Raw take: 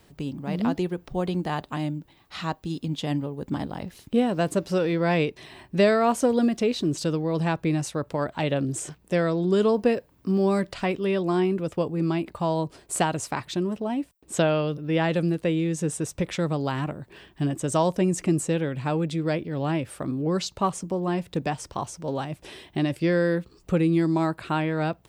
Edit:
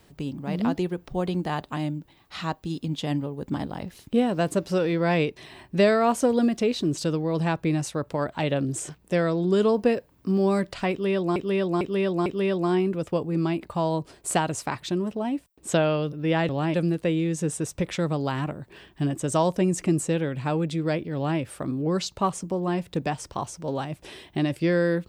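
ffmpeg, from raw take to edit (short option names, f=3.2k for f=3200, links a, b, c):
-filter_complex "[0:a]asplit=6[a][b][c][d][e][f];[a]atrim=end=11.362[g];[b]atrim=start=10.908:end=11.362[h];[c]atrim=start=10.908:end=11.362[i];[d]atrim=start=10.908:end=15.142[j];[e]atrim=start=19.548:end=19.802[k];[f]atrim=start=15.138[l];[g][h]acrossfade=d=0.004:c1=hsin:c2=hsin[m];[m][i]acrossfade=d=0.004:c1=hsin:c2=hsin[n];[n][j]acrossfade=d=0.004:c1=hsin:c2=hsin[o];[o][k]acrossfade=d=0.004:c1=hsin:c2=hsin[p];[p][l]acrossfade=d=0.004:c1=hsin:c2=hsin"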